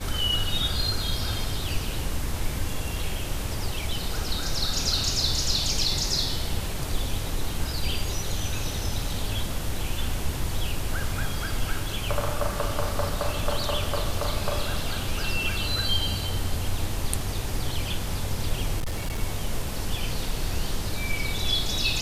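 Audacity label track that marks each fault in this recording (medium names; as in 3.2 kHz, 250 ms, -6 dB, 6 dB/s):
18.780000	19.230000	clipped -24.5 dBFS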